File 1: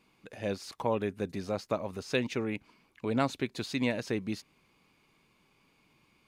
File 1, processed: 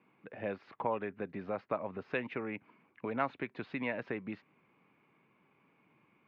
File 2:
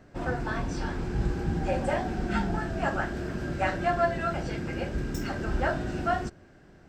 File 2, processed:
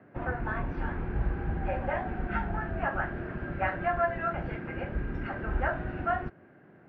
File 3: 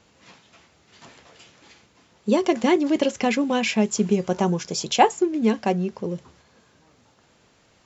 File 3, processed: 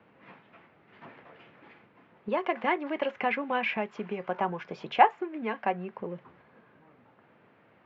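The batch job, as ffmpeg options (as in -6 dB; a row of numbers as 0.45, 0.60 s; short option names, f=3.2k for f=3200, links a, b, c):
-filter_complex "[0:a]lowpass=f=2.3k:w=0.5412,lowpass=f=2.3k:w=1.3066,acrossover=split=100|650|1800[a][b][c][d];[a]acrusher=bits=5:mix=0:aa=0.5[e];[b]acompressor=threshold=-37dB:ratio=6[f];[e][f][c][d]amix=inputs=4:normalize=0"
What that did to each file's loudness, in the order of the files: -5.0, -2.5, -7.5 LU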